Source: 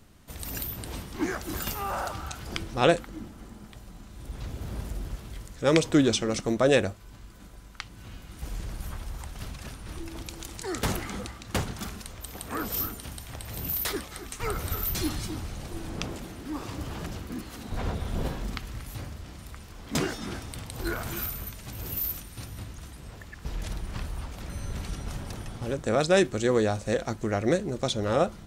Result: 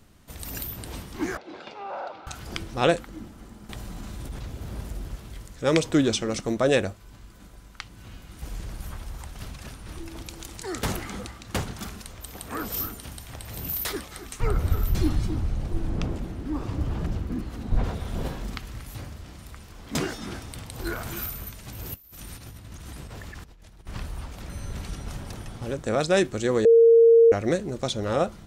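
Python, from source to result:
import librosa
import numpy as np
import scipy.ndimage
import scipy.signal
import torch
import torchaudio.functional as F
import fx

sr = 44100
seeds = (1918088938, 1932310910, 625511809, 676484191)

y = fx.cabinet(x, sr, low_hz=410.0, low_slope=12, high_hz=3500.0, hz=(520.0, 1200.0, 1800.0, 3000.0), db=(3, -9, -9, -8), at=(1.37, 2.27))
y = fx.env_flatten(y, sr, amount_pct=70, at=(3.69, 4.39))
y = fx.tilt_eq(y, sr, slope=-2.5, at=(14.4, 17.84))
y = fx.over_compress(y, sr, threshold_db=-44.0, ratio=-1.0, at=(21.94, 23.87))
y = fx.edit(y, sr, fx.bleep(start_s=26.65, length_s=0.67, hz=460.0, db=-11.0), tone=tone)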